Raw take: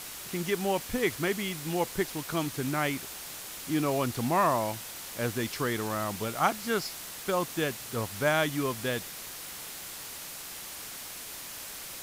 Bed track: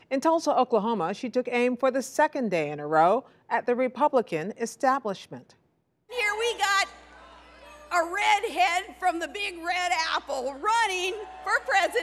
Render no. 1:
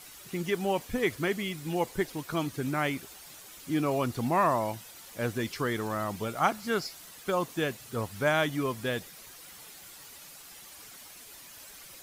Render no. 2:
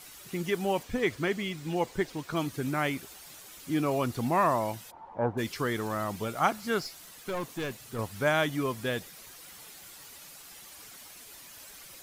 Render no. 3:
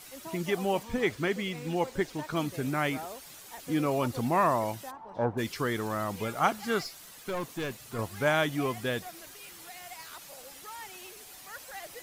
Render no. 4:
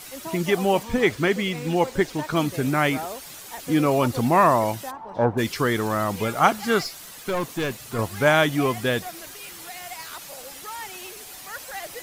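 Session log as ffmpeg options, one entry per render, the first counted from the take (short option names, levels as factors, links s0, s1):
-af "afftdn=nr=10:nf=-42"
-filter_complex "[0:a]asettb=1/sr,asplit=3[s0][s1][s2];[s0]atrim=end=0.834[s3];[s1]atrim=start=0.83:end=2.36,asetpts=PTS-STARTPTS,afade=t=in:d=0.004:c=qsin,afade=t=out:st=1.526:d=0.004:c=qsin,equalizer=f=12000:w=1.2:g=-10[s4];[s2]atrim=start=2.356[s5];[s3][s4]acrossfade=d=0.004:c1=hsin:c2=qsin[s6];[s6][s5]acrossfade=d=0.004:c1=qsin:c2=hsin,asplit=3[s7][s8][s9];[s7]afade=t=out:st=4.9:d=0.02[s10];[s8]lowpass=f=890:t=q:w=7.9,afade=t=in:st=4.9:d=0.02,afade=t=out:st=5.37:d=0.02[s11];[s9]afade=t=in:st=5.37:d=0.02[s12];[s10][s11][s12]amix=inputs=3:normalize=0,asettb=1/sr,asplit=3[s13][s14][s15];[s13]atrim=end=6.824[s16];[s14]atrim=start=6.82:end=7.99,asetpts=PTS-STARTPTS,afade=t=in:d=0.004:c=qsin,afade=t=out:st=1.166:d=0.004:c=qsin,aeval=exprs='(tanh(28.2*val(0)+0.3)-tanh(0.3))/28.2':c=same[s17];[s15]atrim=start=7.986[s18];[s16][s17]acrossfade=d=0.004:c1=hsin:c2=qsin[s19];[s19][s18]acrossfade=d=0.004:c1=qsin:c2=hsin"
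-filter_complex "[1:a]volume=0.0891[s0];[0:a][s0]amix=inputs=2:normalize=0"
-af "volume=2.51"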